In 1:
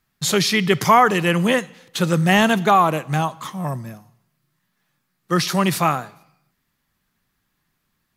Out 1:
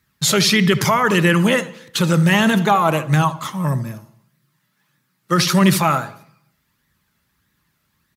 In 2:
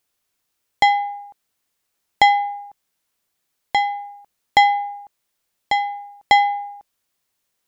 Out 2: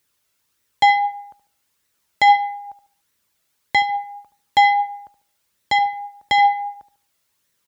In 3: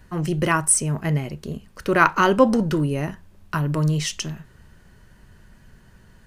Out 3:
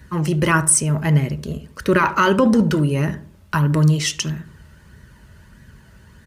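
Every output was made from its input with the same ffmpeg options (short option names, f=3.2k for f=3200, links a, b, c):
-filter_complex "[0:a]highpass=f=48:w=0.5412,highpass=f=48:w=1.3066,alimiter=limit=-10dB:level=0:latency=1:release=21,flanger=delay=0.5:depth=1:regen=53:speed=1.6:shape=sinusoidal,asuperstop=centerf=730:order=4:qfactor=6.7,asplit=2[a][b];[b]adelay=73,lowpass=f=920:p=1,volume=-12dB,asplit=2[c][d];[d]adelay=73,lowpass=f=920:p=1,volume=0.44,asplit=2[e][f];[f]adelay=73,lowpass=f=920:p=1,volume=0.44,asplit=2[g][h];[h]adelay=73,lowpass=f=920:p=1,volume=0.44[i];[a][c][e][g][i]amix=inputs=5:normalize=0,volume=9dB"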